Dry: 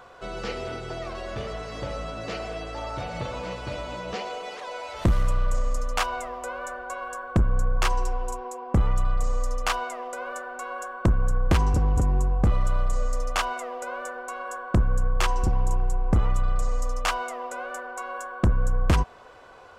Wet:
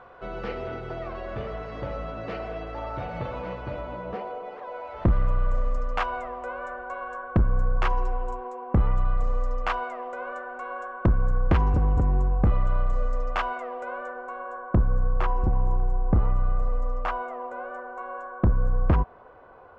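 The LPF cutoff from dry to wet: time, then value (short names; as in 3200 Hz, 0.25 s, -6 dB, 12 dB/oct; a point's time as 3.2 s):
3.36 s 2100 Hz
4.4 s 1100 Hz
5.74 s 2100 Hz
13.83 s 2100 Hz
14.51 s 1300 Hz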